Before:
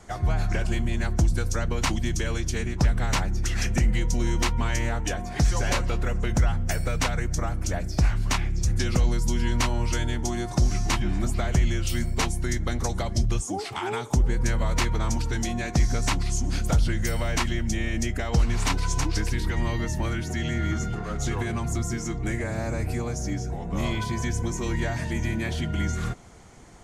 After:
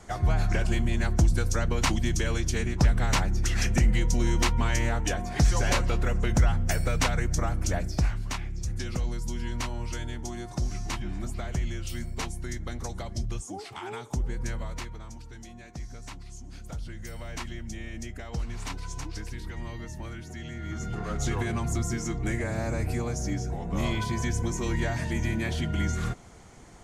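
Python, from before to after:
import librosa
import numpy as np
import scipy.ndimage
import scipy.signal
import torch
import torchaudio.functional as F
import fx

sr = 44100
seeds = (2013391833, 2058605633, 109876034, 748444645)

y = fx.gain(x, sr, db=fx.line((7.8, 0.0), (8.28, -8.0), (14.53, -8.0), (15.07, -17.5), (16.5, -17.5), (17.41, -11.0), (20.61, -11.0), (21.02, -1.0)))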